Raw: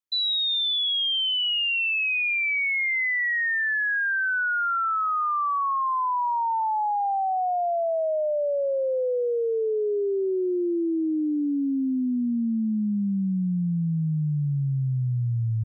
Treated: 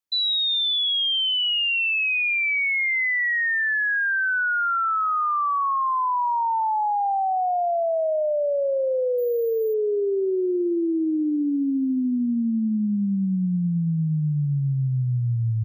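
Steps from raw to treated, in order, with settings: 9.18–9.74 careless resampling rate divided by 3×, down filtered, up hold; on a send: analogue delay 0.213 s, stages 2048, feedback 44%, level -22 dB; on the sum: gain +2 dB

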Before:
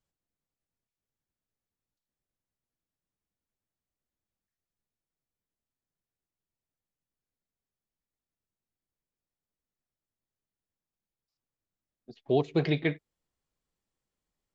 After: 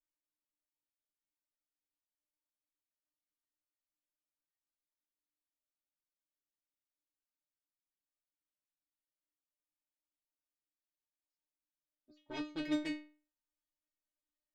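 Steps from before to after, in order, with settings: added harmonics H 4 -8 dB, 6 -11 dB, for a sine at -13.5 dBFS; metallic resonator 300 Hz, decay 0.4 s, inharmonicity 0.002; gain +4.5 dB

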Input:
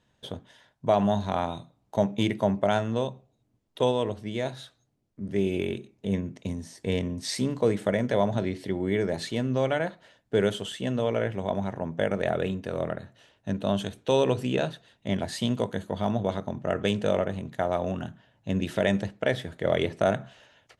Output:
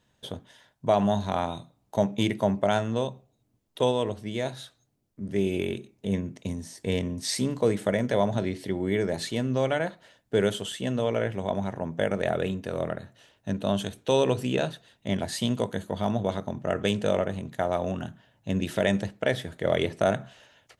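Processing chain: high shelf 7300 Hz +7.5 dB

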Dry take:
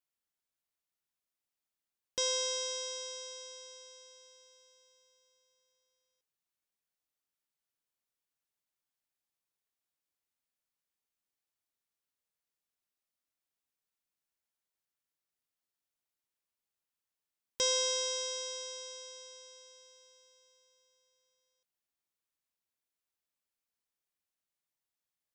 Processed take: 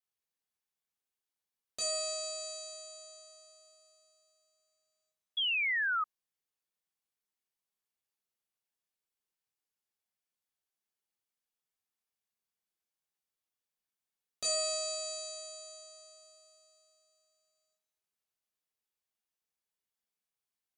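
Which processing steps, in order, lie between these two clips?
two-slope reverb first 0.51 s, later 3.2 s, from -19 dB, DRR -4.5 dB; painted sound fall, 6.55–7.37, 1000–2800 Hz -24 dBFS; varispeed +22%; gain -7 dB

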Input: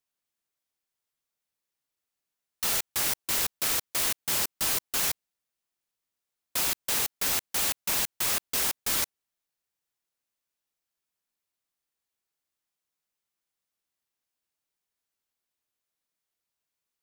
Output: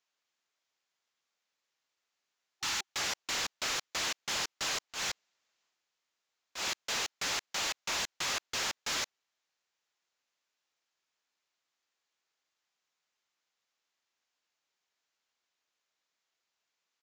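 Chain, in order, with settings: downsampling 16000 Hz; 2.59–2.88 spectral delete 370–790 Hz; overdrive pedal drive 20 dB, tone 5600 Hz, clips at -18.5 dBFS; 4.89–6.67 transient shaper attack -10 dB, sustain +5 dB; gain -7 dB

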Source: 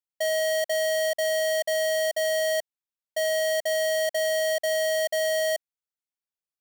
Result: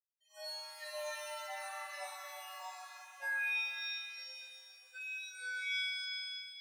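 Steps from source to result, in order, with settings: gliding pitch shift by -5 st starting unshifted; on a send: flutter echo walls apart 5.6 m, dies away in 0.47 s; on the sum: echoes that change speed 92 ms, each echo +5 st, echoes 3, each echo -6 dB; LFO high-pass sine 1.8 Hz 860–3600 Hz; gate -23 dBFS, range -26 dB; spectral gate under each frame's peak -25 dB strong; bell 400 Hz +11.5 dB 0.5 oct; resonator 150 Hz, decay 1 s, harmonics all, mix 100%; shimmer reverb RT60 2.1 s, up +7 st, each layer -2 dB, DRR 1 dB; gain +2 dB

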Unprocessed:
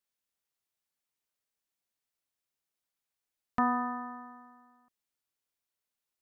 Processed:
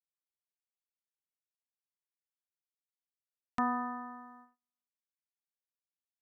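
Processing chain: gate -52 dBFS, range -37 dB; gain -3.5 dB

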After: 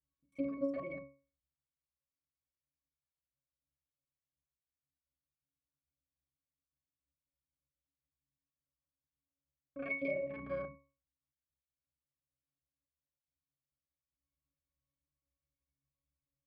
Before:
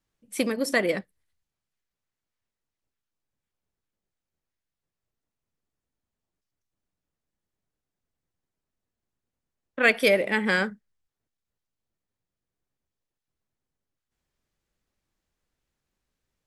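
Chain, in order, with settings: local time reversal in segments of 32 ms; octave resonator C#, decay 0.37 s; gain +1.5 dB

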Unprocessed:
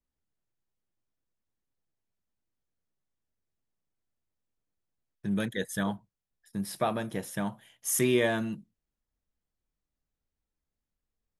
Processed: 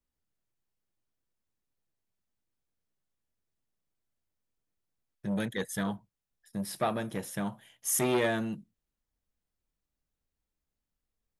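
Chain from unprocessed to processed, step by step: core saturation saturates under 760 Hz

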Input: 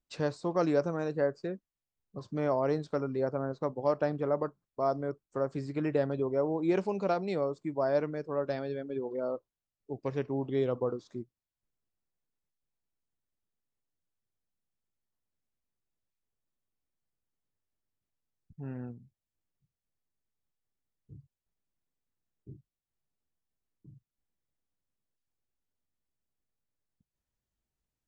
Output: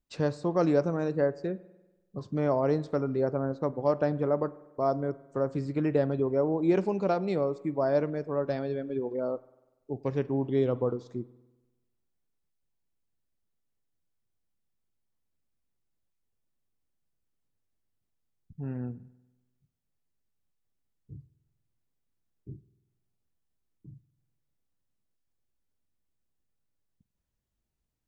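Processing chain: low shelf 480 Hz +5.5 dB; spring tank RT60 1.1 s, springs 48 ms, chirp 70 ms, DRR 18 dB

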